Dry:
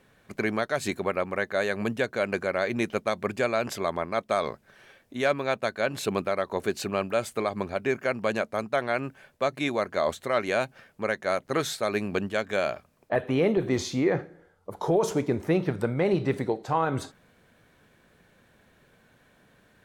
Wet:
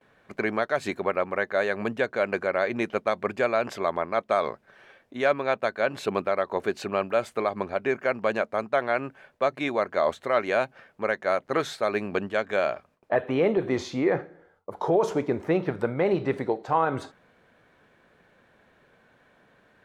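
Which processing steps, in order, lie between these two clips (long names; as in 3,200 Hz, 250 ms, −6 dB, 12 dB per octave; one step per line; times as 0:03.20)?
low-shelf EQ 290 Hz −11 dB
noise gate with hold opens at −55 dBFS
low-pass filter 1,600 Hz 6 dB per octave
level +5 dB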